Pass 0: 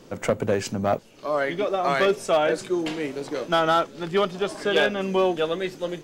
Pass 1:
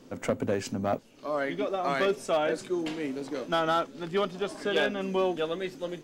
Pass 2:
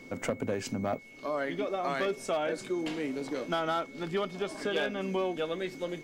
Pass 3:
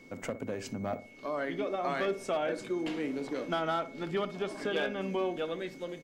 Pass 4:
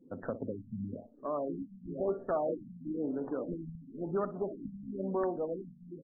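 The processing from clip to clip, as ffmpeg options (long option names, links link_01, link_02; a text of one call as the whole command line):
ffmpeg -i in.wav -af "equalizer=frequency=260:width_type=o:width=0.25:gain=9.5,volume=-6dB" out.wav
ffmpeg -i in.wav -af "acompressor=threshold=-33dB:ratio=2,aeval=exprs='val(0)+0.00251*sin(2*PI*2200*n/s)':channel_layout=same,volume=1.5dB" out.wav
ffmpeg -i in.wav -filter_complex "[0:a]acrossover=split=3800[link_01][link_02];[link_01]dynaudnorm=framelen=420:gausssize=5:maxgain=4dB[link_03];[link_03][link_02]amix=inputs=2:normalize=0,asplit=2[link_04][link_05];[link_05]adelay=61,lowpass=frequency=880:poles=1,volume=-11dB,asplit=2[link_06][link_07];[link_07]adelay=61,lowpass=frequency=880:poles=1,volume=0.41,asplit=2[link_08][link_09];[link_09]adelay=61,lowpass=frequency=880:poles=1,volume=0.41,asplit=2[link_10][link_11];[link_11]adelay=61,lowpass=frequency=880:poles=1,volume=0.41[link_12];[link_04][link_06][link_08][link_10][link_12]amix=inputs=5:normalize=0,volume=-5dB" out.wav
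ffmpeg -i in.wav -af "afftdn=noise_reduction=23:noise_floor=-48,aeval=exprs='(mod(13.3*val(0)+1,2)-1)/13.3':channel_layout=same,afftfilt=real='re*lt(b*sr/1024,240*pow(1900/240,0.5+0.5*sin(2*PI*0.99*pts/sr)))':imag='im*lt(b*sr/1024,240*pow(1900/240,0.5+0.5*sin(2*PI*0.99*pts/sr)))':win_size=1024:overlap=0.75" out.wav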